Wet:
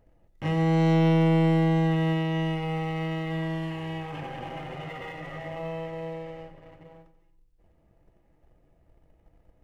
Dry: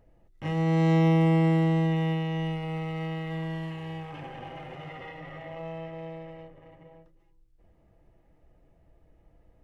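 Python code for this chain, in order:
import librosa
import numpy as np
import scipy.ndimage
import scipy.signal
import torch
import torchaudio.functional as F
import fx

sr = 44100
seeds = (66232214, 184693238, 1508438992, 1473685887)

p1 = fx.leveller(x, sr, passes=1)
y = p1 + fx.echo_feedback(p1, sr, ms=90, feedback_pct=39, wet_db=-12.0, dry=0)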